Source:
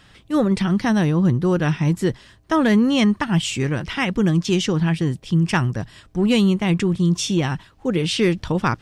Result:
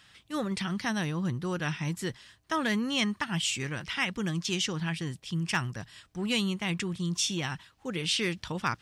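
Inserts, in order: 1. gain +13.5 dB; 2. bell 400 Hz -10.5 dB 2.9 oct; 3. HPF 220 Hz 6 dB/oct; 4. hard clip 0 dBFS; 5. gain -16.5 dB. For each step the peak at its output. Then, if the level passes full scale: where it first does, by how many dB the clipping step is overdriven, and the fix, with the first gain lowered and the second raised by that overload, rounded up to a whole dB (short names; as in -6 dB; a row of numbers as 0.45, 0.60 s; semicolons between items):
+5.5, +3.5, +4.0, 0.0, -16.5 dBFS; step 1, 4.0 dB; step 1 +9.5 dB, step 5 -12.5 dB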